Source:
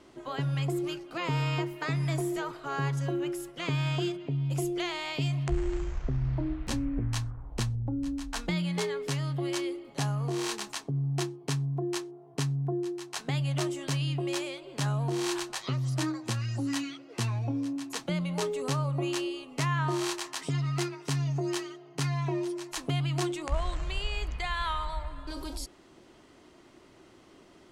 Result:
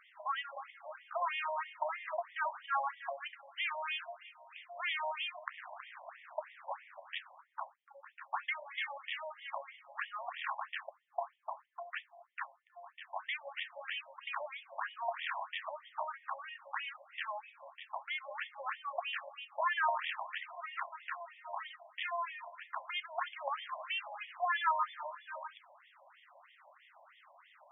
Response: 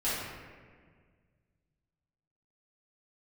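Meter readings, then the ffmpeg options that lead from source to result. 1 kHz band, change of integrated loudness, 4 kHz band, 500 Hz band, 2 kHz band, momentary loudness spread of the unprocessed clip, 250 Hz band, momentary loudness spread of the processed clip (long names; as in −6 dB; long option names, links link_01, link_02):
+1.0 dB, −7.5 dB, −7.0 dB, −10.0 dB, 0.0 dB, 5 LU, below −40 dB, 12 LU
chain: -filter_complex "[0:a]acrossover=split=3500[link_01][link_02];[link_02]acompressor=threshold=-55dB:ratio=4:attack=1:release=60[link_03];[link_01][link_03]amix=inputs=2:normalize=0,afftfilt=real='re*between(b*sr/1024,730*pow(2600/730,0.5+0.5*sin(2*PI*3.1*pts/sr))/1.41,730*pow(2600/730,0.5+0.5*sin(2*PI*3.1*pts/sr))*1.41)':imag='im*between(b*sr/1024,730*pow(2600/730,0.5+0.5*sin(2*PI*3.1*pts/sr))/1.41,730*pow(2600/730,0.5+0.5*sin(2*PI*3.1*pts/sr))*1.41)':win_size=1024:overlap=0.75,volume=5dB"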